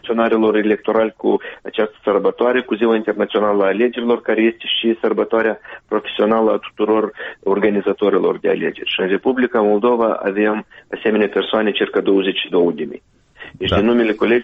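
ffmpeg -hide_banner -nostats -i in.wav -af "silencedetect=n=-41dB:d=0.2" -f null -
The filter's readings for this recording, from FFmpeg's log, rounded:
silence_start: 12.98
silence_end: 13.37 | silence_duration: 0.39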